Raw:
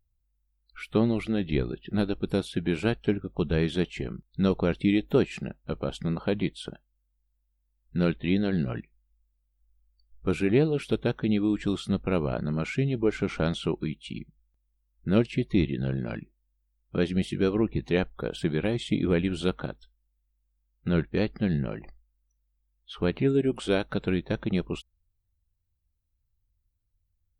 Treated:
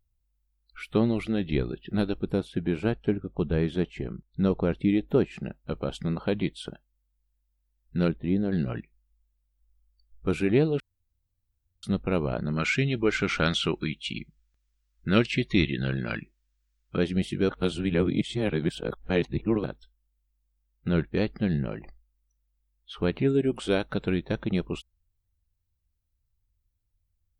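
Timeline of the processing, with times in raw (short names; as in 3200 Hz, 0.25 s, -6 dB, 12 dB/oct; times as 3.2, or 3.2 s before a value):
2.22–5.45 high shelf 2300 Hz -10 dB
8.08–8.52 bell 3500 Hz -14 dB 2.6 oct
10.8–11.83 room tone
12.56–16.97 band shelf 3000 Hz +9 dB 2.9 oct
17.49–19.64 reverse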